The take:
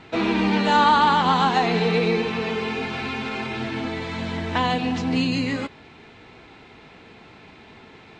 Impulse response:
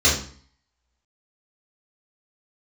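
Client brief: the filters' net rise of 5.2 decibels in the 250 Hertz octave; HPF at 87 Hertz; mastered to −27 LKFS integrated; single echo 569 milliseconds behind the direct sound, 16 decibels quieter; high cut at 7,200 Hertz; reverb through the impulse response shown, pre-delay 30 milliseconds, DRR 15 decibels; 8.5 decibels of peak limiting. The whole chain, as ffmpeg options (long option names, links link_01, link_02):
-filter_complex "[0:a]highpass=87,lowpass=7200,equalizer=frequency=250:width_type=o:gain=6.5,alimiter=limit=-13.5dB:level=0:latency=1,aecho=1:1:569:0.158,asplit=2[link_01][link_02];[1:a]atrim=start_sample=2205,adelay=30[link_03];[link_02][link_03]afir=irnorm=-1:irlink=0,volume=-33.5dB[link_04];[link_01][link_04]amix=inputs=2:normalize=0,volume=-4dB"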